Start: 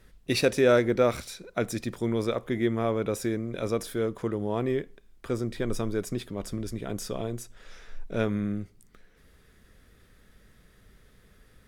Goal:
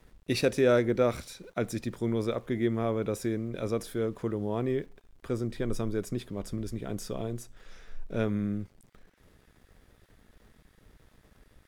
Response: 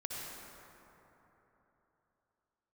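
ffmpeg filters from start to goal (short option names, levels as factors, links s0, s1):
-filter_complex "[0:a]lowshelf=f=470:g=4,acrossover=split=940[s0][s1];[s0]aeval=exprs='val(0)*gte(abs(val(0)),0.00237)':c=same[s2];[s2][s1]amix=inputs=2:normalize=0,volume=0.596"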